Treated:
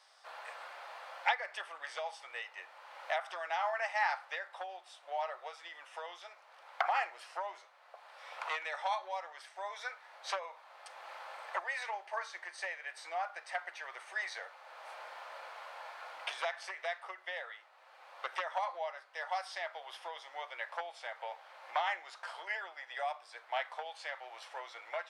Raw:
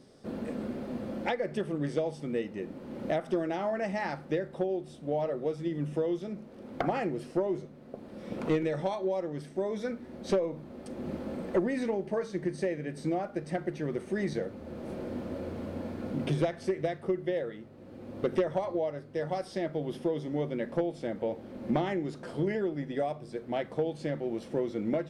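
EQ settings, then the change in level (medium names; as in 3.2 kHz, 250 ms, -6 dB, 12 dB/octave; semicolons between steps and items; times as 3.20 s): steep high-pass 810 Hz 36 dB/octave; treble shelf 6.6 kHz -11.5 dB; +5.5 dB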